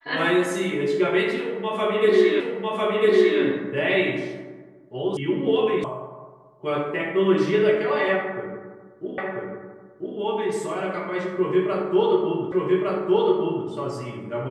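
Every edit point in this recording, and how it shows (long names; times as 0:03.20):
0:02.40: the same again, the last 1 s
0:05.17: cut off before it has died away
0:05.84: cut off before it has died away
0:09.18: the same again, the last 0.99 s
0:12.52: the same again, the last 1.16 s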